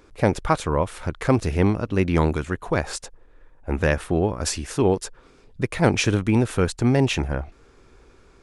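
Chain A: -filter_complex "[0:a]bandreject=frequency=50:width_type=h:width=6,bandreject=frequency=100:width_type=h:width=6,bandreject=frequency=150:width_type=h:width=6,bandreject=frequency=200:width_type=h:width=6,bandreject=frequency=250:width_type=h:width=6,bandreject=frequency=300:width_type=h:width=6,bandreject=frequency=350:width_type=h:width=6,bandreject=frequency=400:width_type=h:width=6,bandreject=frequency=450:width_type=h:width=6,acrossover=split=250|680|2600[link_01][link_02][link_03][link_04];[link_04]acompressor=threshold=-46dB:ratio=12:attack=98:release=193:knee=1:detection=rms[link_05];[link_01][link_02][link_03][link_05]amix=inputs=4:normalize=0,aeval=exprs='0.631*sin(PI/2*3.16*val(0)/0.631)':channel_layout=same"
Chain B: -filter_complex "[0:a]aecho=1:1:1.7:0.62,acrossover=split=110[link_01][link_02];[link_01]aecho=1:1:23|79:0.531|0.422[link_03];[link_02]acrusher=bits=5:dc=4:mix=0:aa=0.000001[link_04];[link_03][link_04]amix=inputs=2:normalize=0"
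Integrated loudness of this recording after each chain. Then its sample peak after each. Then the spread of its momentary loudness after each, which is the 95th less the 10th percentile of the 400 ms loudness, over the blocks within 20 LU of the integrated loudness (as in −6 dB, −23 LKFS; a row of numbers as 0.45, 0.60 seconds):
−13.0, −21.5 LKFS; −4.0, −2.0 dBFS; 8, 11 LU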